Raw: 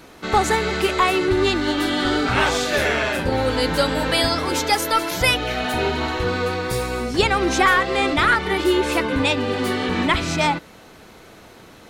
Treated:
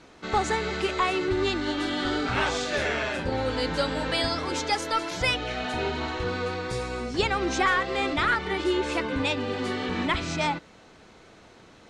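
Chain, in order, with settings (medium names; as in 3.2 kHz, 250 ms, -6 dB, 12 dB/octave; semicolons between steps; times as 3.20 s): low-pass 8 kHz 24 dB/octave; trim -7 dB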